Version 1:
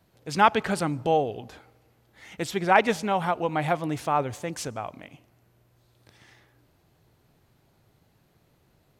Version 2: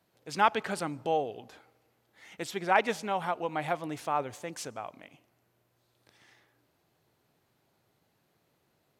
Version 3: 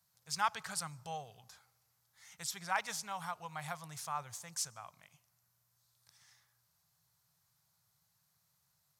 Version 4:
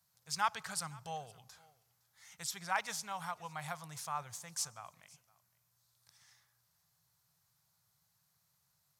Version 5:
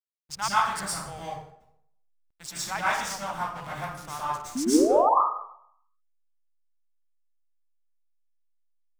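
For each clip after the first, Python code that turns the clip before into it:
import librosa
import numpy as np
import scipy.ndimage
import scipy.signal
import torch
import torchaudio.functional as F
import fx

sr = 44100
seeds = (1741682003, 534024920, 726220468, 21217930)

y1 = fx.highpass(x, sr, hz=270.0, slope=6)
y1 = y1 * 10.0 ** (-5.0 / 20.0)
y2 = fx.curve_eq(y1, sr, hz=(160.0, 290.0, 1100.0, 2800.0, 5400.0), db=(0, -26, 0, -5, 10))
y2 = y2 * 10.0 ** (-5.5 / 20.0)
y3 = y2 + 10.0 ** (-24.0 / 20.0) * np.pad(y2, (int(513 * sr / 1000.0), 0))[:len(y2)]
y4 = fx.backlash(y3, sr, play_db=-39.0)
y4 = fx.spec_paint(y4, sr, seeds[0], shape='rise', start_s=4.55, length_s=0.54, low_hz=240.0, high_hz=1300.0, level_db=-30.0)
y4 = fx.rev_plate(y4, sr, seeds[1], rt60_s=0.7, hf_ratio=0.7, predelay_ms=100, drr_db=-8.5)
y4 = y4 * 10.0 ** (1.5 / 20.0)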